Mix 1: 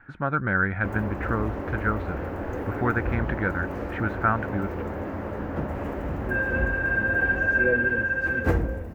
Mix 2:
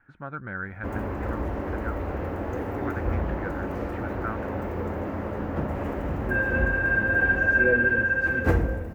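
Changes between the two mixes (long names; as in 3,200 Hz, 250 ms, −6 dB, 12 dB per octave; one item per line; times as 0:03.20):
speech −10.5 dB
background: send +6.5 dB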